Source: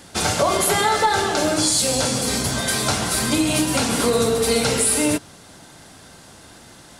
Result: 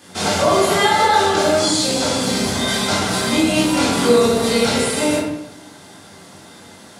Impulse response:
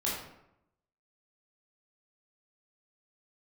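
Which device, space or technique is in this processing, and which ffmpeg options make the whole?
bathroom: -filter_complex "[0:a]acrossover=split=7100[link_01][link_02];[link_02]acompressor=threshold=-32dB:ratio=4:attack=1:release=60[link_03];[link_01][link_03]amix=inputs=2:normalize=0,highpass=110[link_04];[1:a]atrim=start_sample=2205[link_05];[link_04][link_05]afir=irnorm=-1:irlink=0,volume=-2.5dB"

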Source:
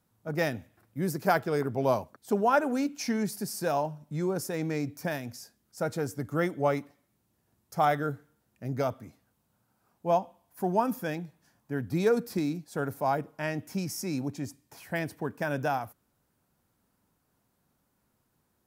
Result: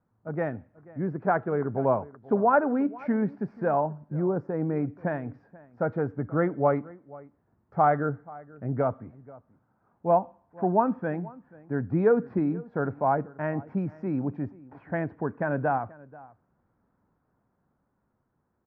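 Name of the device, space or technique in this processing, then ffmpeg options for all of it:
action camera in a waterproof case: -filter_complex "[0:a]asplit=3[link_01][link_02][link_03];[link_01]afade=type=out:start_time=4.09:duration=0.02[link_04];[link_02]equalizer=frequency=2700:width_type=o:width=1.4:gain=-9,afade=type=in:start_time=4.09:duration=0.02,afade=type=out:start_time=4.75:duration=0.02[link_05];[link_03]afade=type=in:start_time=4.75:duration=0.02[link_06];[link_04][link_05][link_06]amix=inputs=3:normalize=0,lowpass=frequency=1600:width=0.5412,lowpass=frequency=1600:width=1.3066,asplit=2[link_07][link_08];[link_08]adelay=484,volume=-21dB,highshelf=frequency=4000:gain=-10.9[link_09];[link_07][link_09]amix=inputs=2:normalize=0,dynaudnorm=framelen=180:gausssize=21:maxgain=3.5dB" -ar 48000 -c:a aac -b:a 128k

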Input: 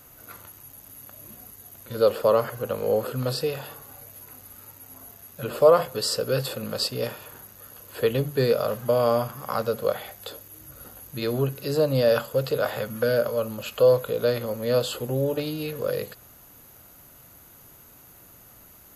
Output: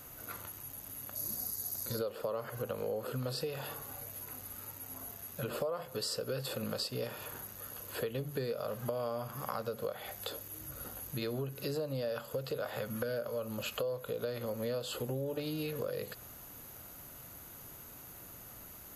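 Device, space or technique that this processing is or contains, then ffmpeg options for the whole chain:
serial compression, peaks first: -filter_complex "[0:a]acompressor=threshold=-30dB:ratio=5,acompressor=threshold=-40dB:ratio=1.5,asettb=1/sr,asplit=3[link_01][link_02][link_03];[link_01]atrim=end=1.154[link_04];[link_02]atrim=start=1.15:end=1.99,asetpts=PTS-STARTPTS,afade=type=in:duration=0.004:curve=qsin,afade=type=out:start_time=0.836:duration=0.004:curve=qsin,highshelf=frequency=3800:width_type=q:width=3:gain=7[link_05];[link_03]atrim=start=1.986[link_06];[link_04][link_05]acrossfade=duration=0.004:curve1=hsin:curve2=qsin[link_07];[link_07][link_06]acrossfade=duration=0.004:curve1=qsin:curve2=hsin"

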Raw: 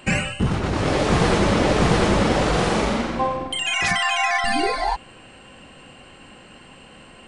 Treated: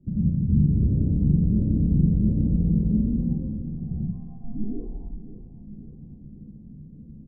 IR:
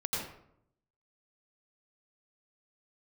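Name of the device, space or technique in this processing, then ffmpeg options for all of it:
club heard from the street: -filter_complex "[0:a]lowpass=1700,aecho=1:1:544|1088|1632|2176:0.15|0.0733|0.0359|0.0176,alimiter=limit=-15.5dB:level=0:latency=1:release=314,lowpass=frequency=240:width=0.5412,lowpass=frequency=240:width=1.3066[link_01];[1:a]atrim=start_sample=2205[link_02];[link_01][link_02]afir=irnorm=-1:irlink=0"

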